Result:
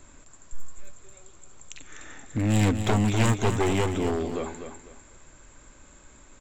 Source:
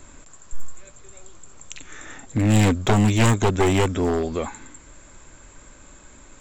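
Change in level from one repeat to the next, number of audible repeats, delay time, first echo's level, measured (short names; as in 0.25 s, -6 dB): -11.0 dB, 3, 0.249 s, -8.5 dB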